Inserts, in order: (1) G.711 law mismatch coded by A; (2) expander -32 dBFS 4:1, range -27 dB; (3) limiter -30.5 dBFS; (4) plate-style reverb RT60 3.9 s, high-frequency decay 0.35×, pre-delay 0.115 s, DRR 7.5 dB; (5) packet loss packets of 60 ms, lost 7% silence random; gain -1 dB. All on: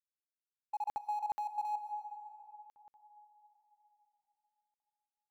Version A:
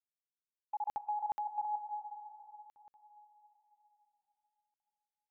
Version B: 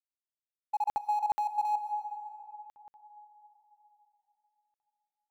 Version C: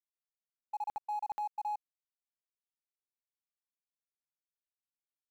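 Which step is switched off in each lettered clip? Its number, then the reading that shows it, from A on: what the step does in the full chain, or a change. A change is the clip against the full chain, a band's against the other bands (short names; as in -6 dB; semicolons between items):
1, distortion -28 dB; 3, mean gain reduction 6.5 dB; 4, momentary loudness spread change -12 LU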